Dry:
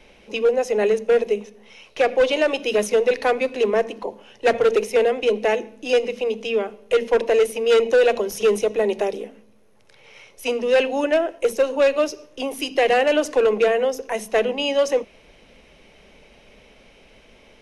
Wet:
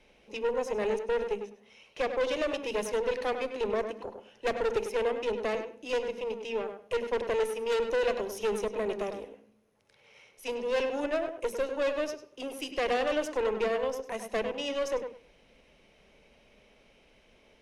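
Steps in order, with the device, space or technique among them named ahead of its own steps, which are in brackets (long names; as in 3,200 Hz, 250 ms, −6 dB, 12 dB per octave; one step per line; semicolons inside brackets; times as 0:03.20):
rockabilly slapback (tube saturation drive 16 dB, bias 0.65; tape delay 100 ms, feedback 20%, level −6 dB, low-pass 2,300 Hz)
level −7.5 dB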